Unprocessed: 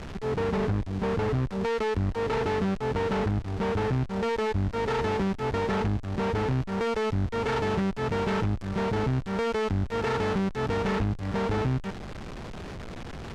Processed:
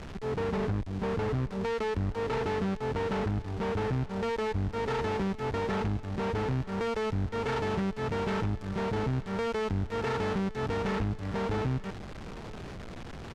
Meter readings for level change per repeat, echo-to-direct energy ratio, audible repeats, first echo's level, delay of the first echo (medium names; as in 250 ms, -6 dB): no regular repeats, -19.5 dB, 1, -19.5 dB, 914 ms